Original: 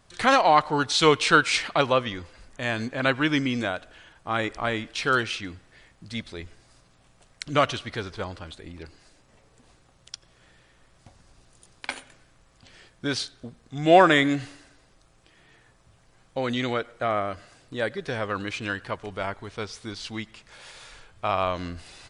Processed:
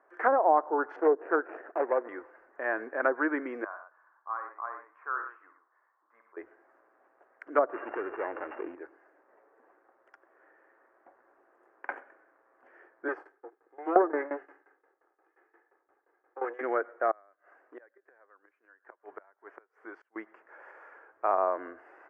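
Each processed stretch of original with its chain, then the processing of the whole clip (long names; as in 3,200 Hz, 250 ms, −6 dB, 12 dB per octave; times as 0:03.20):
0:00.96–0:02.09: running median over 41 samples + high-pass filter 230 Hz
0:03.64–0:06.37: resonant band-pass 1,100 Hz, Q 6.6 + multi-tap delay 60/117 ms −7.5/−9.5 dB
0:07.73–0:08.75: samples sorted by size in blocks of 16 samples + low-pass filter 3,700 Hz 24 dB per octave + envelope flattener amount 70%
0:13.08–0:16.61: lower of the sound and its delayed copy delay 2.4 ms + notch filter 250 Hz, Q 8 + shaped tremolo saw down 5.7 Hz, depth 90%
0:17.11–0:20.16: low-shelf EQ 480 Hz −9.5 dB + gate with flip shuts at −27 dBFS, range −28 dB
whole clip: elliptic band-pass filter 340–1,700 Hz, stop band 40 dB; treble cut that deepens with the level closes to 690 Hz, closed at −19 dBFS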